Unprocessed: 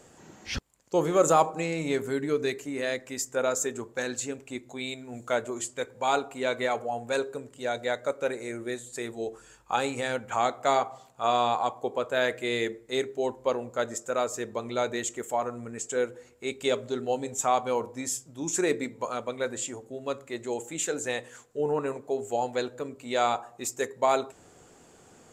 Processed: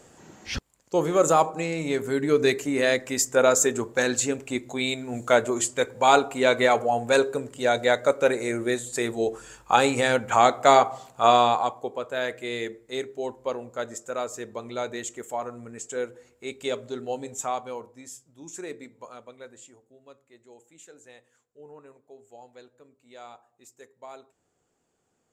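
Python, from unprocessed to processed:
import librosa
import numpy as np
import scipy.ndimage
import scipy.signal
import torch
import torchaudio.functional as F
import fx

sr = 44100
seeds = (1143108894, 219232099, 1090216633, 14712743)

y = fx.gain(x, sr, db=fx.line((1.97, 1.5), (2.49, 8.0), (11.28, 8.0), (11.95, -2.5), (17.37, -2.5), (17.96, -11.0), (19.06, -11.0), (20.22, -19.5)))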